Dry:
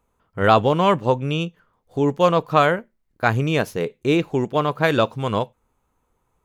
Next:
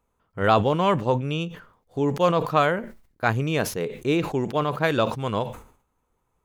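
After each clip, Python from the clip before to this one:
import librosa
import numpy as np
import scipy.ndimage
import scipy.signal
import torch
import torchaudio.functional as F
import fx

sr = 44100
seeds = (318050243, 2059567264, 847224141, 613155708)

y = fx.sustainer(x, sr, db_per_s=110.0)
y = y * 10.0 ** (-4.0 / 20.0)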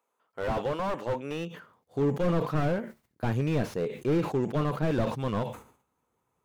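y = fx.filter_sweep_highpass(x, sr, from_hz=450.0, to_hz=110.0, start_s=1.09, end_s=1.82, q=0.77)
y = fx.slew_limit(y, sr, full_power_hz=39.0)
y = y * 10.0 ** (-2.0 / 20.0)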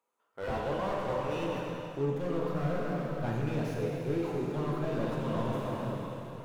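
y = fx.rev_plate(x, sr, seeds[0], rt60_s=4.1, hf_ratio=0.95, predelay_ms=0, drr_db=-3.5)
y = fx.rider(y, sr, range_db=4, speed_s=0.5)
y = y * 10.0 ** (-8.0 / 20.0)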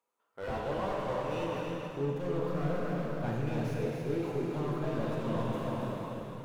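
y = x + 10.0 ** (-6.0 / 20.0) * np.pad(x, (int(278 * sr / 1000.0), 0))[:len(x)]
y = y * 10.0 ** (-2.0 / 20.0)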